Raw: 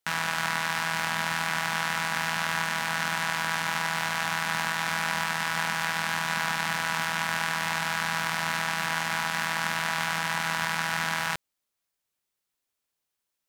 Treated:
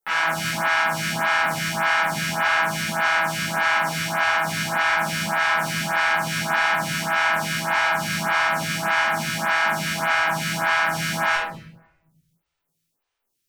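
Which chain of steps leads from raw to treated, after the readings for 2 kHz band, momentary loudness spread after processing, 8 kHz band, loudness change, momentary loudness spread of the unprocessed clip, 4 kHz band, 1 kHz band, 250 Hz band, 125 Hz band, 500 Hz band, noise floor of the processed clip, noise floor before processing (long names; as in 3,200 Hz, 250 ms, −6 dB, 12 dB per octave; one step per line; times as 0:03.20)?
+6.5 dB, 3 LU, +3.5 dB, +6.5 dB, 0 LU, +4.0 dB, +6.5 dB, +7.5 dB, +7.0 dB, +10.5 dB, −77 dBFS, −83 dBFS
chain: rectangular room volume 290 cubic metres, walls mixed, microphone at 4.1 metres
phaser with staggered stages 1.7 Hz
level −1.5 dB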